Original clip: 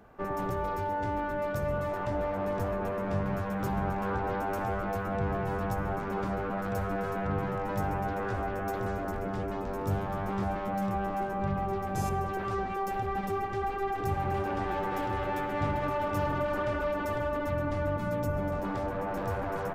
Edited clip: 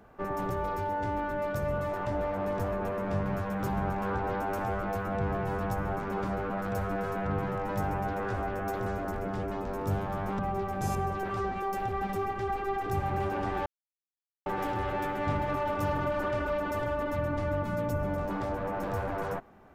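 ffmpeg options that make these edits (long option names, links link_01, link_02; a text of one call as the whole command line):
ffmpeg -i in.wav -filter_complex "[0:a]asplit=3[link_01][link_02][link_03];[link_01]atrim=end=10.392[link_04];[link_02]atrim=start=11.528:end=14.8,asetpts=PTS-STARTPTS,afade=type=out:start_time=3.268:duration=0.004:curve=hsin,apad=pad_dur=0.8[link_05];[link_03]atrim=start=14.8,asetpts=PTS-STARTPTS,afade=type=in:duration=0.004:curve=hsin[link_06];[link_05][link_06]concat=n=2:v=0:a=1[link_07];[link_04][link_07]acrossfade=duration=0.004:curve1=hsin:curve2=hsin" out.wav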